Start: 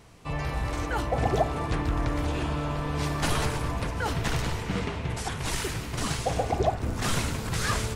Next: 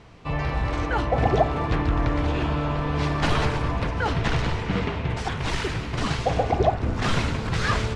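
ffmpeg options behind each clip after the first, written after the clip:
-af "lowpass=4100,volume=1.68"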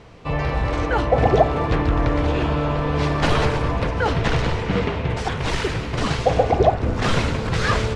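-af "equalizer=f=500:t=o:w=0.58:g=5,volume=1.41"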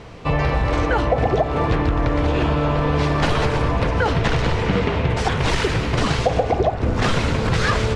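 -af "acompressor=threshold=0.0891:ratio=6,volume=2"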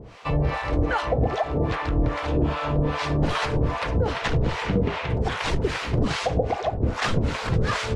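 -filter_complex "[0:a]acrossover=split=630[s0][s1];[s0]aeval=exprs='val(0)*(1-1/2+1/2*cos(2*PI*2.5*n/s))':c=same[s2];[s1]aeval=exprs='val(0)*(1-1/2-1/2*cos(2*PI*2.5*n/s))':c=same[s3];[s2][s3]amix=inputs=2:normalize=0"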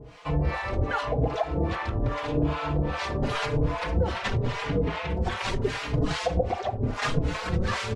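-filter_complex "[0:a]asplit=2[s0][s1];[s1]adelay=4.4,afreqshift=0.85[s2];[s0][s2]amix=inputs=2:normalize=1"

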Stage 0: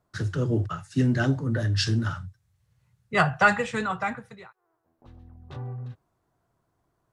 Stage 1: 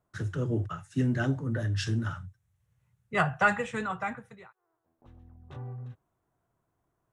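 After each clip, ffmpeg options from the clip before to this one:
-af "equalizer=f=4600:w=2.9:g=-9.5,volume=0.596"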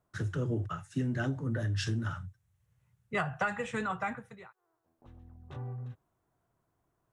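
-af "acompressor=threshold=0.0398:ratio=6"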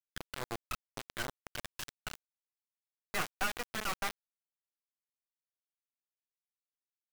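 -af "aeval=exprs='val(0)+0.00251*(sin(2*PI*60*n/s)+sin(2*PI*2*60*n/s)/2+sin(2*PI*3*60*n/s)/3+sin(2*PI*4*60*n/s)/4+sin(2*PI*5*60*n/s)/5)':c=same,bandpass=f=1300:t=q:w=0.56:csg=0,acrusher=bits=3:dc=4:mix=0:aa=0.000001,volume=1.26"

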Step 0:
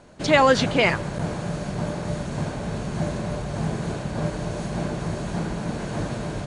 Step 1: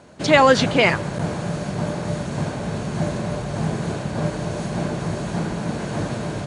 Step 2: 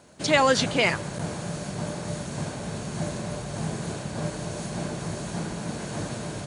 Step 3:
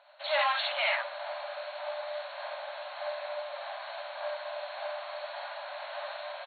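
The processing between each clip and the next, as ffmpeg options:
-af "highpass=70,volume=1.41"
-af "crystalizer=i=2:c=0,volume=0.447"
-af "aecho=1:1:52|67:0.708|0.668,asoftclip=type=hard:threshold=0.1,afftfilt=real='re*between(b*sr/4096,540,4400)':imag='im*between(b*sr/4096,540,4400)':win_size=4096:overlap=0.75,volume=0.668"

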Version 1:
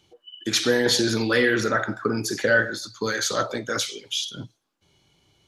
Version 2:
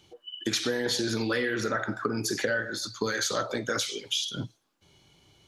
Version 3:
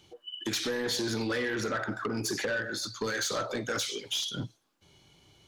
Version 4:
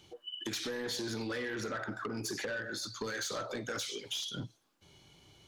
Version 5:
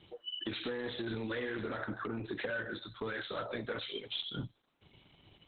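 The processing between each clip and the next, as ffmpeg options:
-af "acompressor=threshold=0.0398:ratio=6,volume=1.33"
-af "asoftclip=type=tanh:threshold=0.0562"
-af "acompressor=threshold=0.01:ratio=2"
-af "volume=1.26" -ar 48000 -c:a libopus -b:a 8k

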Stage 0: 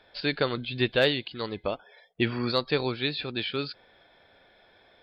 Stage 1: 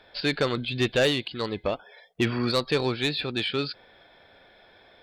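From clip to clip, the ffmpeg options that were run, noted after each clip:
-af "asoftclip=type=tanh:threshold=0.106,volume=1.58"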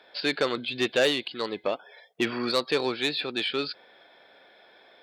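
-af "highpass=270"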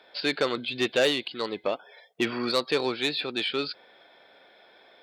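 -af "bandreject=f=1700:w=27"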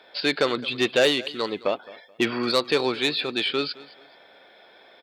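-af "aecho=1:1:215|430:0.1|0.026,volume=1.5"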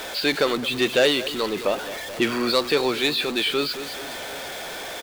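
-af "aeval=exprs='val(0)+0.5*0.0376*sgn(val(0))':c=same,aecho=1:1:748:0.0841"

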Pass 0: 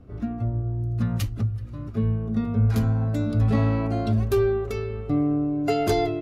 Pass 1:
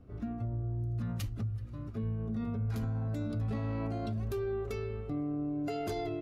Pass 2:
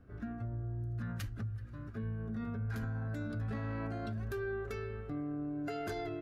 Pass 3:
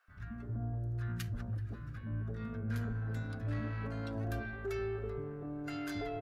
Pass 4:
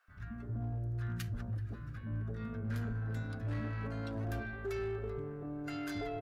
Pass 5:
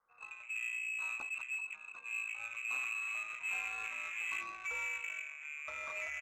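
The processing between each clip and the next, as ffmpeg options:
-af "alimiter=limit=0.0891:level=0:latency=1:release=37,volume=0.447"
-af "equalizer=f=1600:t=o:w=0.45:g=14.5,volume=0.631"
-filter_complex "[0:a]aeval=exprs='0.0376*(cos(1*acos(clip(val(0)/0.0376,-1,1)))-cos(1*PI/2))+0.00188*(cos(5*acos(clip(val(0)/0.0376,-1,1)))-cos(5*PI/2))':c=same,acrossover=split=220|940[s0][s1][s2];[s0]adelay=80[s3];[s1]adelay=330[s4];[s3][s4][s2]amix=inputs=3:normalize=0,volume=1.12"
-af "asoftclip=type=hard:threshold=0.0266"
-af "lowpass=f=2300:t=q:w=0.5098,lowpass=f=2300:t=q:w=0.6013,lowpass=f=2300:t=q:w=0.9,lowpass=f=2300:t=q:w=2.563,afreqshift=-2700,adynamicsmooth=sensitivity=6.5:basefreq=1100"

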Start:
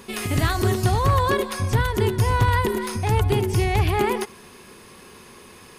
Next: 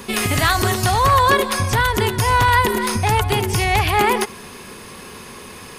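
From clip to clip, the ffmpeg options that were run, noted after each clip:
-filter_complex "[0:a]equalizer=f=360:w=5:g=-3.5,acrossover=split=610|1400[s0][s1][s2];[s0]acompressor=threshold=0.0398:ratio=6[s3];[s3][s1][s2]amix=inputs=3:normalize=0,volume=2.82"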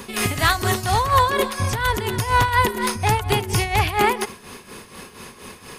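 -af "tremolo=f=4.2:d=0.69"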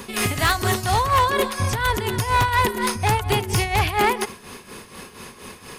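-af "asoftclip=type=hard:threshold=0.224"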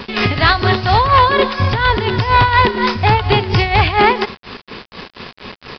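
-af "acrusher=bits=5:mix=0:aa=0.000001,aresample=11025,aresample=44100,volume=2.37"

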